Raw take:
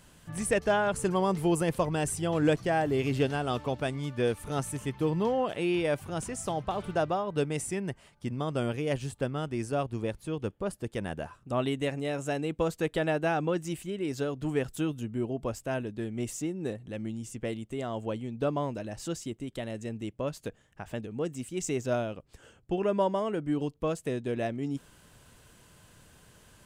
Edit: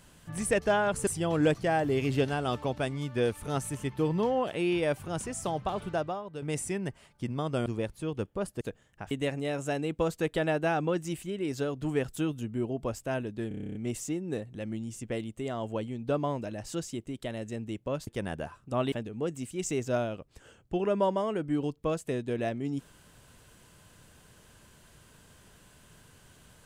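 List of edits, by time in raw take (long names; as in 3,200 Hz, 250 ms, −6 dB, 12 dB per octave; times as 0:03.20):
0:01.07–0:02.09: remove
0:06.77–0:07.44: fade out linear, to −13.5 dB
0:08.68–0:09.91: remove
0:10.86–0:11.71: swap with 0:20.40–0:20.90
0:16.08: stutter 0.03 s, 10 plays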